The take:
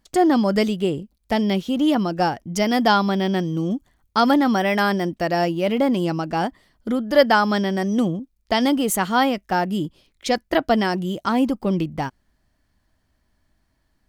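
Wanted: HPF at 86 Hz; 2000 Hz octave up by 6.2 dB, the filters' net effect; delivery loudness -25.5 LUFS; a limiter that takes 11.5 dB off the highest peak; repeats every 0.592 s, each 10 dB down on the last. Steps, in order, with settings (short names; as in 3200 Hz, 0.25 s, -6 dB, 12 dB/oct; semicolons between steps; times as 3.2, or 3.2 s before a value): HPF 86 Hz; bell 2000 Hz +8 dB; limiter -12 dBFS; feedback echo 0.592 s, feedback 32%, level -10 dB; gain -3.5 dB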